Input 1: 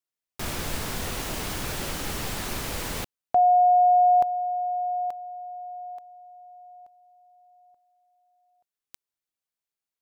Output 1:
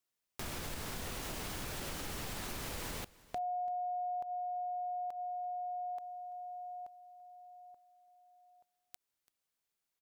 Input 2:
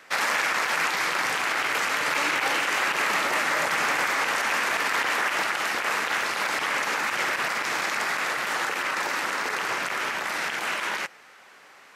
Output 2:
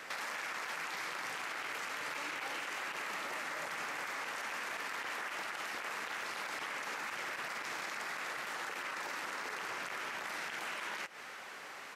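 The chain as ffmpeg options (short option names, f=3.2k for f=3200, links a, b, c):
-filter_complex "[0:a]acompressor=threshold=-40dB:ratio=8:attack=3.2:release=127:knee=1:detection=rms,asplit=2[a][b];[b]aecho=0:1:337:0.0841[c];[a][c]amix=inputs=2:normalize=0,volume=3dB"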